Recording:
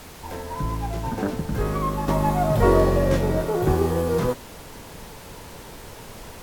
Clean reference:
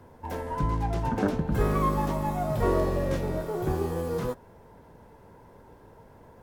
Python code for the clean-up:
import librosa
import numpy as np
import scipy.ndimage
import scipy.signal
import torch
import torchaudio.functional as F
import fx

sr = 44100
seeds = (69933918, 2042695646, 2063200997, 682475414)

y = fx.noise_reduce(x, sr, print_start_s=4.4, print_end_s=4.9, reduce_db=11.0)
y = fx.gain(y, sr, db=fx.steps((0.0, 0.0), (2.08, -7.5)))